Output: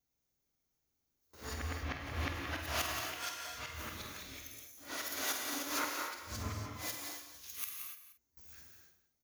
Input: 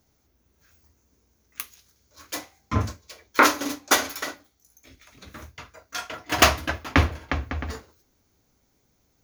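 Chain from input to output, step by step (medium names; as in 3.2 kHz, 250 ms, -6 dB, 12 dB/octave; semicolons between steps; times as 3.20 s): reverse the whole clip; gate with hold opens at -50 dBFS; tone controls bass 0 dB, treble -7 dB; doubling 48 ms -9.5 dB; wow and flutter 22 cents; pre-emphasis filter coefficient 0.8; on a send: delay 176 ms -14 dB; on the sum: compression 3:1, threshold -54 dBFS, peak gain reduction 24.5 dB; gated-style reverb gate 320 ms flat, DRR 1 dB; trim +11 dB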